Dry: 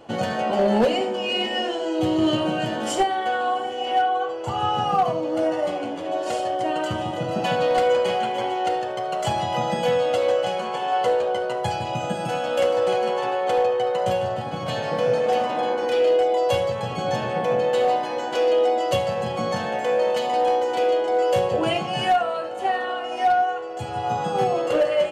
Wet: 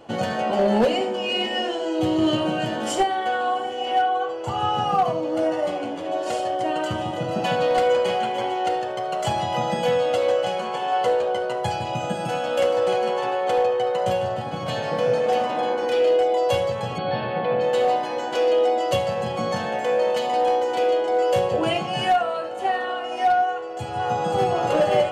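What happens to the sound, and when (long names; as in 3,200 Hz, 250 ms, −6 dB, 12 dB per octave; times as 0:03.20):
0:16.98–0:17.61: elliptic low-pass filter 4,400 Hz
0:23.46–0:24.48: delay throw 530 ms, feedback 65%, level −1.5 dB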